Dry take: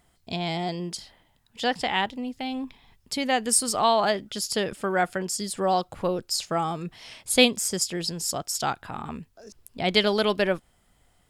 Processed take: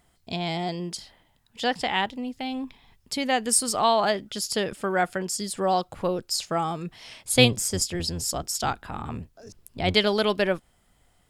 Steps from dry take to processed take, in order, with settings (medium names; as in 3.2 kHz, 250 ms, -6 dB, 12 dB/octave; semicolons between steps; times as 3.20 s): 7.32–9.94 s: octave divider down 1 oct, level 0 dB